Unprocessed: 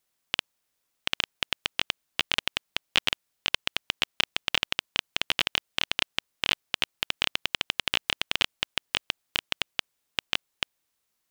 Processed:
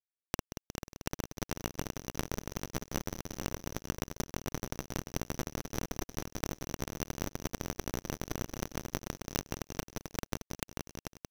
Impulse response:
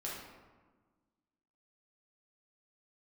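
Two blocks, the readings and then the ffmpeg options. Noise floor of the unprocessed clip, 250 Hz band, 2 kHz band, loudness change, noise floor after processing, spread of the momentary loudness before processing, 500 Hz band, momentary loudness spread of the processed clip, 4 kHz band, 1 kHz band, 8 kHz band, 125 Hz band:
−79 dBFS, +7.0 dB, −15.5 dB, −10.5 dB, below −85 dBFS, 5 LU, +2.0 dB, 3 LU, −20.0 dB, −5.0 dB, +0.5 dB, +9.0 dB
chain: -filter_complex "[0:a]asoftclip=type=tanh:threshold=-21.5dB,asplit=2[link_01][link_02];[link_02]adelay=180,lowpass=frequency=4400:poles=1,volume=-10dB,asplit=2[link_03][link_04];[link_04]adelay=180,lowpass=frequency=4400:poles=1,volume=0.44,asplit=2[link_05][link_06];[link_06]adelay=180,lowpass=frequency=4400:poles=1,volume=0.44,asplit=2[link_07][link_08];[link_08]adelay=180,lowpass=frequency=4400:poles=1,volume=0.44,asplit=2[link_09][link_10];[link_10]adelay=180,lowpass=frequency=4400:poles=1,volume=0.44[link_11];[link_03][link_05][link_07][link_09][link_11]amix=inputs=5:normalize=0[link_12];[link_01][link_12]amix=inputs=2:normalize=0,acrusher=bits=9:mix=0:aa=0.000001,acompressor=threshold=-45dB:ratio=12,asplit=2[link_13][link_14];[link_14]aecho=0:1:440:0.531[link_15];[link_13][link_15]amix=inputs=2:normalize=0,aeval=exprs='abs(val(0))':channel_layout=same,bandreject=frequency=2800:width=17,volume=14dB"

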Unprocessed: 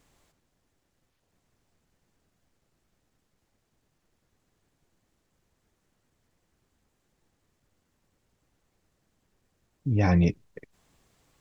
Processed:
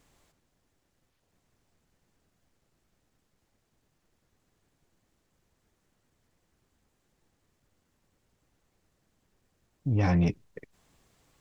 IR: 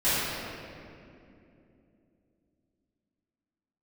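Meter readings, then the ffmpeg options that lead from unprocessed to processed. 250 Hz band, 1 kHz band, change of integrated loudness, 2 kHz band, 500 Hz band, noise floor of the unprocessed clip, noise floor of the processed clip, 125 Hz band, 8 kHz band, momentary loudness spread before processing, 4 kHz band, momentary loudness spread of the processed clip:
−2.5 dB, −2.5 dB, −2.5 dB, −3.0 dB, −3.5 dB, −76 dBFS, −76 dBFS, −2.0 dB, can't be measured, 16 LU, −1.5 dB, 14 LU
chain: -af "asoftclip=type=tanh:threshold=-18dB"

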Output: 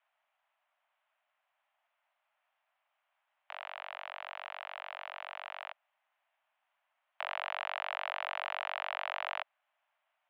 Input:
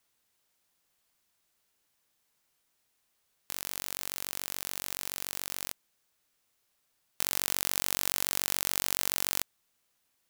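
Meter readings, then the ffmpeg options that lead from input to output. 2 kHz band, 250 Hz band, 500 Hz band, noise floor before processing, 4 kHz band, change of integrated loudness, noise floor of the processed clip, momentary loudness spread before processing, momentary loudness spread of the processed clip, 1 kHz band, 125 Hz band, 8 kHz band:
+1.0 dB, below −40 dB, +1.5 dB, −76 dBFS, −8.5 dB, −8.5 dB, −83 dBFS, 9 LU, 9 LU, +5.0 dB, below −40 dB, below −40 dB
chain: -af "highpass=frequency=220:width_type=q:width=0.5412,highpass=frequency=220:width_type=q:width=1.307,lowpass=frequency=2700:width_type=q:width=0.5176,lowpass=frequency=2700:width_type=q:width=0.7071,lowpass=frequency=2700:width_type=q:width=1.932,afreqshift=390,tiltshelf=frequency=1100:gain=6.5,volume=4.5dB"

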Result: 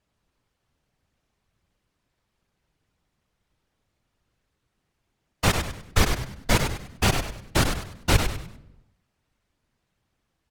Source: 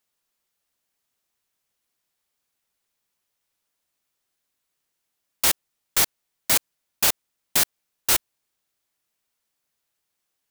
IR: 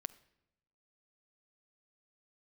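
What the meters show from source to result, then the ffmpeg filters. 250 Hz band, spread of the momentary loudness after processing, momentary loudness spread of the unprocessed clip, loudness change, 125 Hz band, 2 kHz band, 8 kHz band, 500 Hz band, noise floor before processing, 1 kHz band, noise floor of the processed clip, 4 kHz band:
+12.0 dB, 7 LU, 8 LU, −3.5 dB, +19.5 dB, +2.5 dB, −7.5 dB, +7.5 dB, −79 dBFS, +5.0 dB, −78 dBFS, −2.0 dB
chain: -filter_complex "[1:a]atrim=start_sample=2205[link_01];[0:a][link_01]afir=irnorm=-1:irlink=0,aeval=exprs='0.398*sin(PI/2*2.24*val(0)/0.398)':channel_layout=same,aemphasis=mode=reproduction:type=riaa,afftfilt=real='hypot(re,im)*cos(2*PI*random(0))':imag='hypot(re,im)*sin(2*PI*random(1))':win_size=512:overlap=0.75,asplit=5[link_02][link_03][link_04][link_05][link_06];[link_03]adelay=99,afreqshift=-72,volume=-6.5dB[link_07];[link_04]adelay=198,afreqshift=-144,volume=-15.9dB[link_08];[link_05]adelay=297,afreqshift=-216,volume=-25.2dB[link_09];[link_06]adelay=396,afreqshift=-288,volume=-34.6dB[link_10];[link_02][link_07][link_08][link_09][link_10]amix=inputs=5:normalize=0,volume=5dB"

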